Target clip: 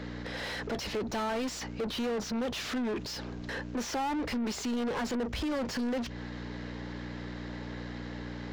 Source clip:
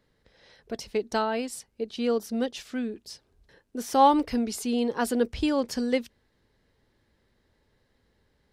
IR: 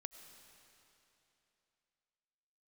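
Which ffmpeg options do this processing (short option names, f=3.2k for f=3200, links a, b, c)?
-filter_complex "[0:a]aeval=exprs='val(0)+0.00251*(sin(2*PI*60*n/s)+sin(2*PI*2*60*n/s)/2+sin(2*PI*3*60*n/s)/3+sin(2*PI*4*60*n/s)/4+sin(2*PI*5*60*n/s)/5)':c=same,acrossover=split=180[a][b];[b]acompressor=threshold=-34dB:ratio=6[c];[a][c]amix=inputs=2:normalize=0,aresample=16000,asoftclip=type=tanh:threshold=-34dB,aresample=44100,asplit=2[d][e];[e]highpass=f=720:p=1,volume=33dB,asoftclip=type=tanh:threshold=-31.5dB[f];[d][f]amix=inputs=2:normalize=0,lowpass=f=2.3k:p=1,volume=-6dB,volume=5dB"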